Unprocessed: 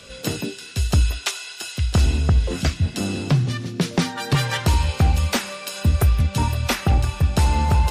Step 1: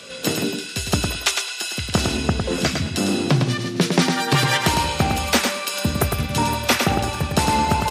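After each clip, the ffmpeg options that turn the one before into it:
ffmpeg -i in.wav -filter_complex "[0:a]highpass=180,asplit=2[link_01][link_02];[link_02]aecho=0:1:106|212|318:0.562|0.101|0.0182[link_03];[link_01][link_03]amix=inputs=2:normalize=0,volume=4.5dB" out.wav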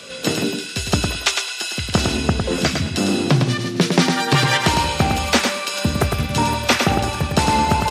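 ffmpeg -i in.wav -filter_complex "[0:a]acrossover=split=8500[link_01][link_02];[link_02]acompressor=threshold=-40dB:ratio=4:attack=1:release=60[link_03];[link_01][link_03]amix=inputs=2:normalize=0,volume=2dB" out.wav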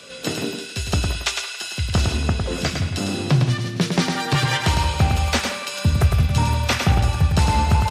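ffmpeg -i in.wav -filter_complex "[0:a]asubboost=boost=8:cutoff=110,flanger=delay=6.9:depth=4.4:regen=-79:speed=0.35:shape=sinusoidal,asplit=2[link_01][link_02];[link_02]adelay=170,highpass=300,lowpass=3400,asoftclip=type=hard:threshold=-15.5dB,volume=-11dB[link_03];[link_01][link_03]amix=inputs=2:normalize=0" out.wav

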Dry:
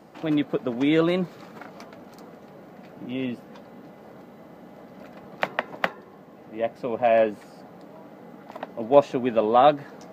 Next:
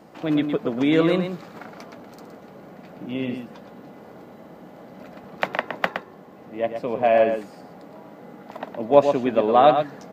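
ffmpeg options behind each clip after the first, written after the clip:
ffmpeg -i in.wav -filter_complex "[0:a]asplit=2[link_01][link_02];[link_02]adelay=116.6,volume=-7dB,highshelf=frequency=4000:gain=-2.62[link_03];[link_01][link_03]amix=inputs=2:normalize=0,volume=1.5dB" out.wav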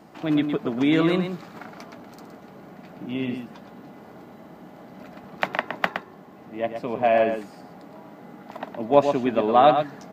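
ffmpeg -i in.wav -af "equalizer=frequency=510:width_type=o:width=0.22:gain=-9.5" out.wav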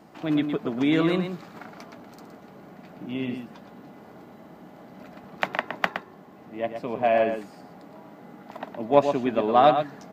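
ffmpeg -i in.wav -af "aeval=exprs='0.841*(cos(1*acos(clip(val(0)/0.841,-1,1)))-cos(1*PI/2))+0.0596*(cos(3*acos(clip(val(0)/0.841,-1,1)))-cos(3*PI/2))':channel_layout=same" out.wav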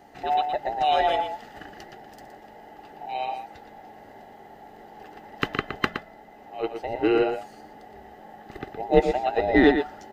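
ffmpeg -i in.wav -af "afftfilt=real='real(if(between(b,1,1008),(2*floor((b-1)/48)+1)*48-b,b),0)':imag='imag(if(between(b,1,1008),(2*floor((b-1)/48)+1)*48-b,b),0)*if(between(b,1,1008),-1,1)':win_size=2048:overlap=0.75" out.wav

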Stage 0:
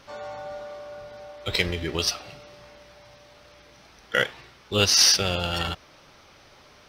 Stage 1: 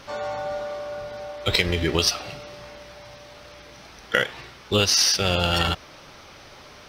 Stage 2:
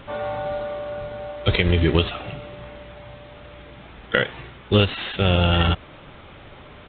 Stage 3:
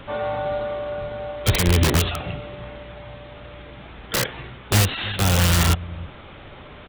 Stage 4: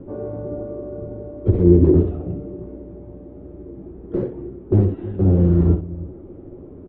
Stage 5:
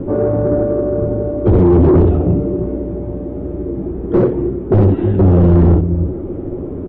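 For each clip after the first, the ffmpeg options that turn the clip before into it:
ffmpeg -i in.wav -af "acompressor=threshold=-23dB:ratio=10,volume=7dB" out.wav
ffmpeg -i in.wav -af "lowshelf=frequency=340:gain=8.5,aresample=8000,acrusher=bits=5:mode=log:mix=0:aa=0.000001,aresample=44100" out.wav
ffmpeg -i in.wav -filter_complex "[0:a]acrossover=split=200[link_01][link_02];[link_01]aecho=1:1:316:0.2[link_03];[link_02]aeval=exprs='(mod(7.08*val(0)+1,2)-1)/7.08':channel_layout=same[link_04];[link_03][link_04]amix=inputs=2:normalize=0,volume=2dB" out.wav
ffmpeg -i in.wav -filter_complex "[0:a]lowpass=frequency=350:width_type=q:width=4.2,asplit=2[link_01][link_02];[link_02]aecho=0:1:11|63:0.473|0.398[link_03];[link_01][link_03]amix=inputs=2:normalize=0" out.wav
ffmpeg -i in.wav -af "apsyclip=18dB,asoftclip=type=tanh:threshold=-1.5dB,volume=-3dB" out.wav

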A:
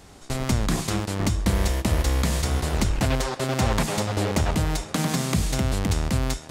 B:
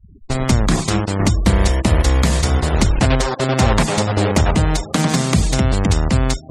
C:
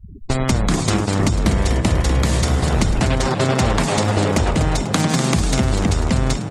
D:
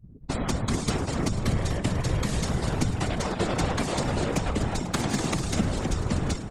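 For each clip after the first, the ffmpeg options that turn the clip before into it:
ffmpeg -i in.wav -af "afftfilt=real='re*gte(hypot(re,im),0.02)':imag='im*gte(hypot(re,im),0.02)':win_size=1024:overlap=0.75,volume=8dB" out.wav
ffmpeg -i in.wav -filter_complex "[0:a]acompressor=threshold=-24dB:ratio=3,asplit=2[link_01][link_02];[link_02]asplit=6[link_03][link_04][link_05][link_06][link_07][link_08];[link_03]adelay=246,afreqshift=55,volume=-9dB[link_09];[link_04]adelay=492,afreqshift=110,volume=-14.4dB[link_10];[link_05]adelay=738,afreqshift=165,volume=-19.7dB[link_11];[link_06]adelay=984,afreqshift=220,volume=-25.1dB[link_12];[link_07]adelay=1230,afreqshift=275,volume=-30.4dB[link_13];[link_08]adelay=1476,afreqshift=330,volume=-35.8dB[link_14];[link_09][link_10][link_11][link_12][link_13][link_14]amix=inputs=6:normalize=0[link_15];[link_01][link_15]amix=inputs=2:normalize=0,volume=6.5dB" out.wav
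ffmpeg -i in.wav -af "aeval=exprs='0.891*(cos(1*acos(clip(val(0)/0.891,-1,1)))-cos(1*PI/2))+0.1*(cos(3*acos(clip(val(0)/0.891,-1,1)))-cos(3*PI/2))':channel_layout=same,afftfilt=real='hypot(re,im)*cos(2*PI*random(0))':imag='hypot(re,im)*sin(2*PI*random(1))':win_size=512:overlap=0.75" out.wav

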